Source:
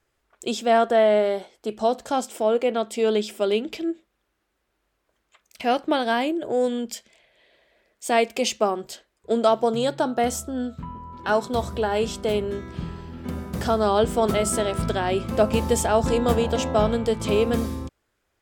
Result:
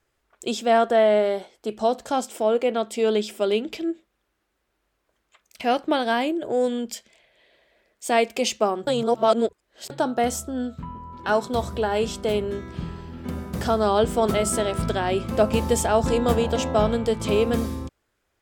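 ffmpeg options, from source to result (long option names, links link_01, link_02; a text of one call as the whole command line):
ffmpeg -i in.wav -filter_complex "[0:a]asplit=3[link_01][link_02][link_03];[link_01]atrim=end=8.872[link_04];[link_02]atrim=start=8.868:end=9.902,asetpts=PTS-STARTPTS,areverse[link_05];[link_03]atrim=start=9.898[link_06];[link_04][link_05]acrossfade=duration=0.004:curve1=hsin:curve2=hsin[link_07];[link_07][link_06]acrossfade=duration=0.004:curve1=hsin:curve2=hsin" out.wav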